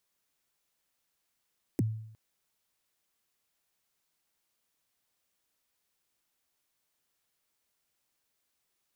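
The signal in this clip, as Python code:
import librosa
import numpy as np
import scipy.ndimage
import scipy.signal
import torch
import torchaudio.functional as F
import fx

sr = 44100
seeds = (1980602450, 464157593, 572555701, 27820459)

y = fx.drum_kick(sr, seeds[0], length_s=0.36, level_db=-22.0, start_hz=380.0, end_hz=110.0, sweep_ms=25.0, decay_s=0.72, click=True)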